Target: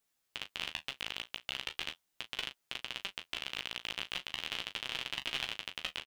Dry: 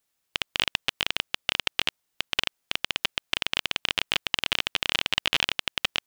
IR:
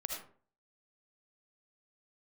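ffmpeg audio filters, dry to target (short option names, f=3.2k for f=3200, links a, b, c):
-af "alimiter=limit=-14dB:level=0:latency=1,flanger=delay=7.1:depth=9.3:regen=-37:speed=0.39:shape=sinusoidal,aecho=1:1:16|38:0.422|0.282"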